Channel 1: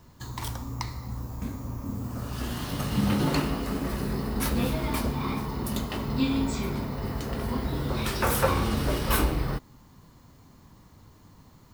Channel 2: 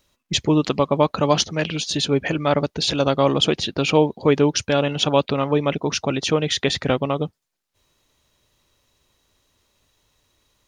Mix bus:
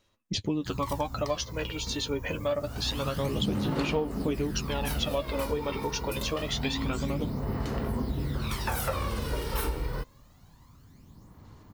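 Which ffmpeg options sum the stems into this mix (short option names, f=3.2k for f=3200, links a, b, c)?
-filter_complex "[0:a]adelay=450,volume=-4.5dB[a];[1:a]flanger=delay=9.1:depth=1.8:regen=30:speed=0.64:shape=triangular,volume=-6dB[b];[a][b]amix=inputs=2:normalize=0,aphaser=in_gain=1:out_gain=1:delay=2.2:decay=0.54:speed=0.26:type=sinusoidal,acompressor=threshold=-26dB:ratio=4"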